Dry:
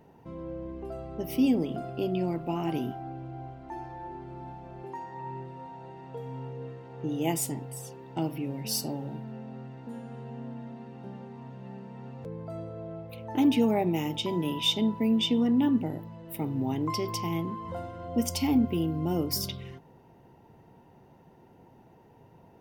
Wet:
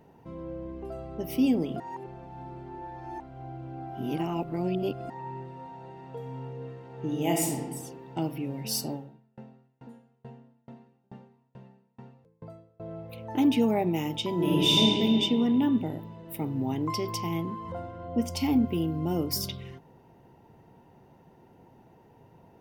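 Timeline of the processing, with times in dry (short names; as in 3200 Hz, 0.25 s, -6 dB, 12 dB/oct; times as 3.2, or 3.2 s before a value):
1.8–5.1 reverse
6.92–7.59 reverb throw, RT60 1.2 s, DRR 0.5 dB
8.94–12.8 dB-ramp tremolo decaying 2.3 Hz, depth 35 dB
14.34–14.81 reverb throw, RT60 2.6 s, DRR -6.5 dB
17.72–18.37 high shelf 4000 Hz -11.5 dB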